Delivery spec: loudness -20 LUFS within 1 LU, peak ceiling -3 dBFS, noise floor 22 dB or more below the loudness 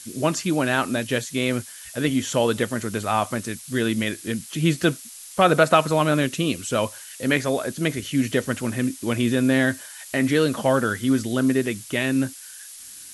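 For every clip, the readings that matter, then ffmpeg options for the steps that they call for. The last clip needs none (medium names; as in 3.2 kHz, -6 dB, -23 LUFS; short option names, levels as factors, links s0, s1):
noise floor -41 dBFS; noise floor target -45 dBFS; loudness -23.0 LUFS; peak level -2.5 dBFS; loudness target -20.0 LUFS
-> -af "afftdn=nr=6:nf=-41"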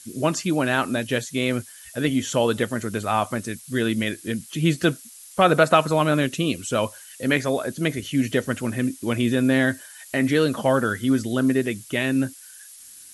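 noise floor -45 dBFS; loudness -23.0 LUFS; peak level -2.5 dBFS; loudness target -20.0 LUFS
-> -af "volume=1.41,alimiter=limit=0.708:level=0:latency=1"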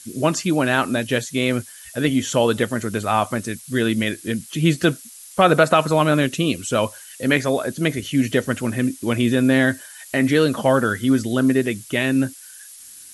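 loudness -20.0 LUFS; peak level -3.0 dBFS; noise floor -42 dBFS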